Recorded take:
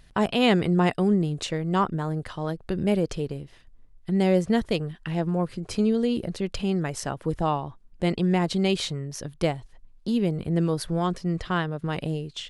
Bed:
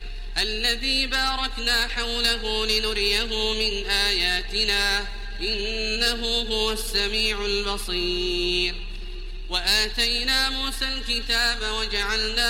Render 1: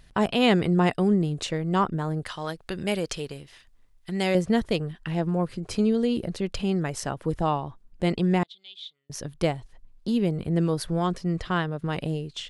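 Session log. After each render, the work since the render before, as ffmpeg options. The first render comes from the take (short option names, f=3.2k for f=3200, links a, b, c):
-filter_complex "[0:a]asettb=1/sr,asplit=3[a][b][c];[a]atrim=end=2.264[d];[b]atrim=start=2.26:end=4.35,asetpts=PTS-STARTPTS,afade=t=in:d=0.004:c=qsin,afade=t=out:st=2.086:d=0.004:c=qsin,tiltshelf=f=810:g=-7[e];[c]atrim=start=4.346[f];[d][e]acrossfade=d=0.004:c1=hsin:c2=qsin[g];[g][f]acrossfade=d=0.004:c1=qsin:c2=hsin,asettb=1/sr,asplit=3[h][i][j];[h]atrim=end=8.434[k];[i]atrim=start=8.43:end=9.1,asetpts=PTS-STARTPTS,afade=t=in:d=0.004:c=qsin,afade=t=out:st=0.666:d=0.004:c=qsin,bandpass=f=3.5k:t=q:w=17[l];[j]atrim=start=9.096[m];[k][l]acrossfade=d=0.004:c1=hsin:c2=qsin[n];[n][m]acrossfade=d=0.004:c1=qsin:c2=hsin"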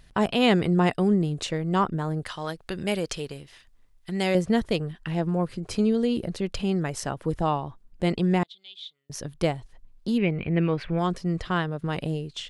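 -filter_complex "[0:a]asettb=1/sr,asplit=3[a][b][c];[a]atrim=end=10.184[d];[b]atrim=start=10.18:end=10.99,asetpts=PTS-STARTPTS,afade=t=in:d=0.004:c=qsin,afade=t=out:st=0.806:d=0.004:c=qsin,lowpass=f=2.4k:t=q:w=6[e];[c]atrim=start=10.986[f];[d][e]acrossfade=d=0.004:c1=hsin:c2=qsin[g];[g][f]acrossfade=d=0.004:c1=qsin:c2=hsin"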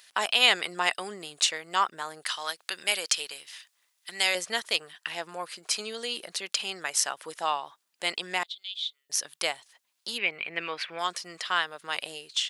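-af "highpass=910,highshelf=f=2.2k:g=11.5"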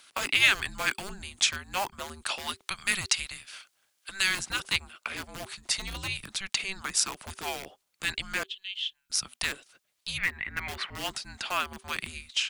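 -filter_complex "[0:a]acrossover=split=140|1200|2200[a][b][c][d];[b]aeval=exprs='(mod(44.7*val(0)+1,2)-1)/44.7':c=same[e];[a][e][c][d]amix=inputs=4:normalize=0,afreqshift=-390"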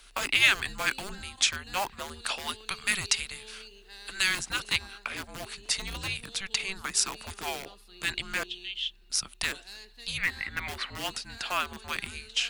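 -filter_complex "[1:a]volume=-25.5dB[a];[0:a][a]amix=inputs=2:normalize=0"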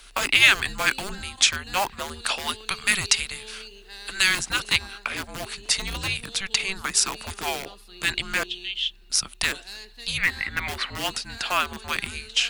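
-af "volume=6dB,alimiter=limit=-1dB:level=0:latency=1"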